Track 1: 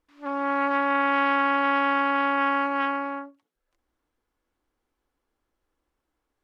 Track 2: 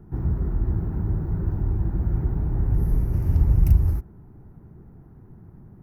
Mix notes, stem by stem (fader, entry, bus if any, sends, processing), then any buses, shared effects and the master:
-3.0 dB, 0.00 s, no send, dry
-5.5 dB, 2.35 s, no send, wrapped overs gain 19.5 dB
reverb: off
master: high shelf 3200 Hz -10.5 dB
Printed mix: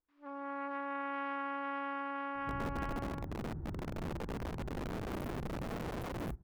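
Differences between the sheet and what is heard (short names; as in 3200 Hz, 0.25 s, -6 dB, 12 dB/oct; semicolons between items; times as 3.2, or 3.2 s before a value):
stem 1 -3.0 dB -> -15.0 dB; stem 2 -5.5 dB -> -14.5 dB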